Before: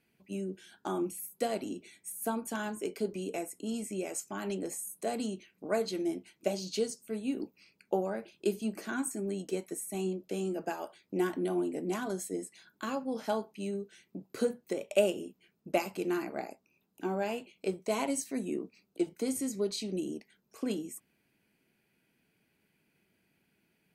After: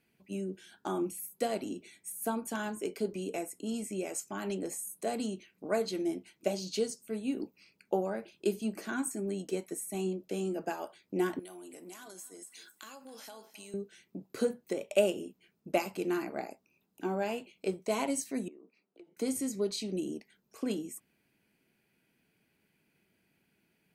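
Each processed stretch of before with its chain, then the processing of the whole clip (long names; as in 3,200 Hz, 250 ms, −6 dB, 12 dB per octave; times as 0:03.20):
0:11.39–0:13.74: spectral tilt +4 dB per octave + downward compressor, threshold −46 dBFS + repeating echo 260 ms, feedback 29%, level −17 dB
0:18.48–0:19.17: Bessel high-pass filter 410 Hz + downward compressor 8 to 1, threshold −49 dBFS + head-to-tape spacing loss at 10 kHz 29 dB
whole clip: no processing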